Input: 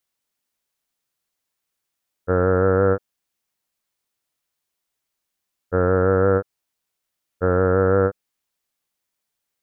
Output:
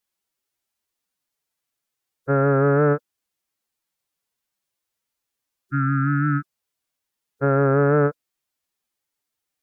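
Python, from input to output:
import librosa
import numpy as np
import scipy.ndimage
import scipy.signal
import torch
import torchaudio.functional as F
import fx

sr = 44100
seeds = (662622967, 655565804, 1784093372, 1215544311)

y = fx.wow_flutter(x, sr, seeds[0], rate_hz=2.1, depth_cents=27.0)
y = fx.pitch_keep_formants(y, sr, semitones=7.0)
y = fx.spec_repair(y, sr, seeds[1], start_s=5.61, length_s=0.94, low_hz=380.0, high_hz=1200.0, source='both')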